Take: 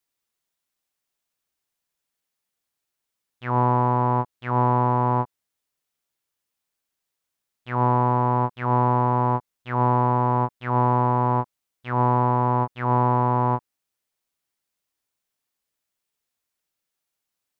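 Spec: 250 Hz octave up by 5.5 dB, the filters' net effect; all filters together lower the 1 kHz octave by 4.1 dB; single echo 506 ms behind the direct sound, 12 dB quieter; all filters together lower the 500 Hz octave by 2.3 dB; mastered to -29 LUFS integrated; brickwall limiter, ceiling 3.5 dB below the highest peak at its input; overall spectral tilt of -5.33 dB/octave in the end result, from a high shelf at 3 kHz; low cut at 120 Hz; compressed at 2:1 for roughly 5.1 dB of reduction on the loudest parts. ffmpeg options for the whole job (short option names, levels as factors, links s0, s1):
-af "highpass=120,equalizer=f=250:t=o:g=7.5,equalizer=f=500:t=o:g=-5,equalizer=f=1000:t=o:g=-4.5,highshelf=f=3000:g=9,acompressor=threshold=0.0562:ratio=2,alimiter=limit=0.133:level=0:latency=1,aecho=1:1:506:0.251,volume=1.06"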